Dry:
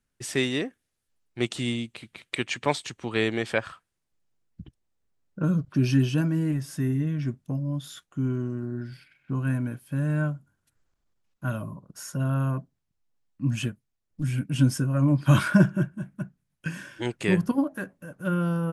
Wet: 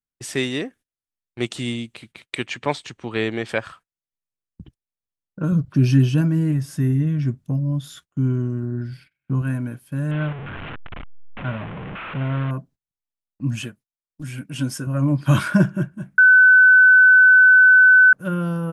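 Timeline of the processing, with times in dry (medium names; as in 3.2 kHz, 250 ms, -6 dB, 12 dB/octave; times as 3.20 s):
2.46–3.49 s: treble shelf 7.3 kHz -11.5 dB
5.52–9.42 s: peaking EQ 89 Hz +7 dB 2.3 oct
10.11–12.51 s: one-bit delta coder 16 kbps, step -28.5 dBFS
13.61–14.87 s: bass shelf 240 Hz -10 dB
16.18–18.13 s: bleep 1.51 kHz -9.5 dBFS
whole clip: gate -49 dBFS, range -20 dB; trim +2 dB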